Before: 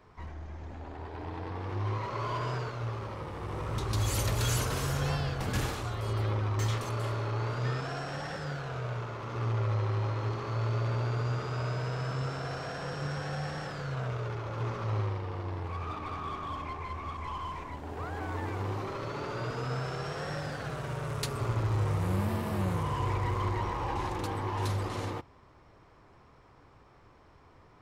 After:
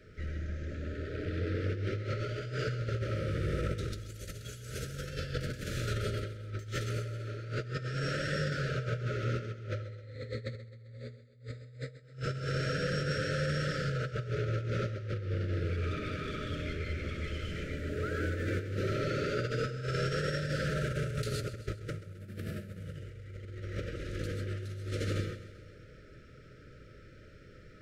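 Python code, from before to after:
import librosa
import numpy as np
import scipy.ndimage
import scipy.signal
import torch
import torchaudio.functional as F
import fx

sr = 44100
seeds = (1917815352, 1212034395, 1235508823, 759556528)

y = fx.ripple_eq(x, sr, per_octave=1.0, db=17, at=(9.82, 12.02), fade=0.02)
y = fx.rev_gated(y, sr, seeds[0], gate_ms=170, shape='rising', drr_db=3.5)
y = fx.over_compress(y, sr, threshold_db=-34.0, ratio=-0.5)
y = scipy.signal.sosfilt(scipy.signal.cheby1(5, 1.0, [620.0, 1300.0], 'bandstop', fs=sr, output='sos'), y)
y = fx.high_shelf(y, sr, hz=10000.0, db=-4.5)
y = fx.echo_feedback(y, sr, ms=131, feedback_pct=57, wet_db=-15.0)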